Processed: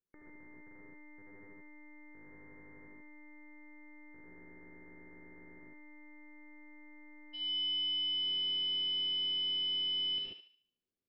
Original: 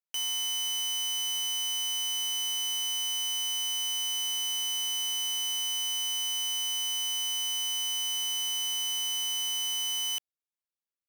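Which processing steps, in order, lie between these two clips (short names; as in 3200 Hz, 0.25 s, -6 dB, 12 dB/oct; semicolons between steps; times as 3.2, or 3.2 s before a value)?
resonant low shelf 590 Hz +14 dB, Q 1.5; hard clip -34 dBFS, distortion -10 dB; brick-wall FIR low-pass 2200 Hz, from 7.33 s 5600 Hz; thinning echo 73 ms, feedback 42%, high-pass 870 Hz, level -7 dB; non-linear reverb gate 0.16 s rising, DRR -2 dB; gain -6.5 dB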